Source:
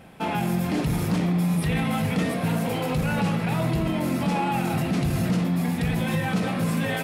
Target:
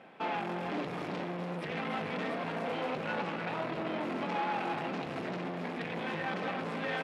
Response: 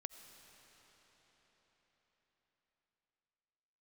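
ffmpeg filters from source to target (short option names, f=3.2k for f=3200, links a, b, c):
-af "aeval=exprs='(tanh(25.1*val(0)+0.6)-tanh(0.6))/25.1':c=same,highpass=330,lowpass=3k,aecho=1:1:290:0.335"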